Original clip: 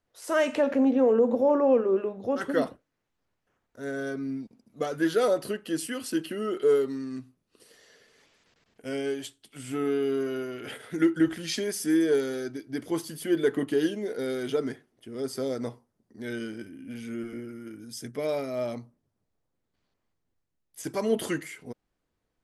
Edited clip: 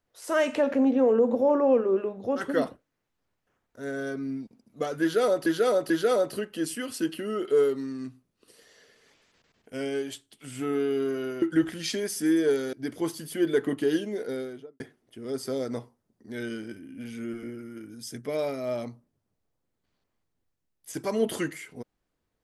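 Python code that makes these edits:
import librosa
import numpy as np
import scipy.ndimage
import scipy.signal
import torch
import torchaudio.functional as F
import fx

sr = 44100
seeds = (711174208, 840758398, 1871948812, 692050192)

y = fx.studio_fade_out(x, sr, start_s=14.09, length_s=0.61)
y = fx.edit(y, sr, fx.repeat(start_s=5.02, length_s=0.44, count=3),
    fx.cut(start_s=10.54, length_s=0.52),
    fx.cut(start_s=12.37, length_s=0.26), tone=tone)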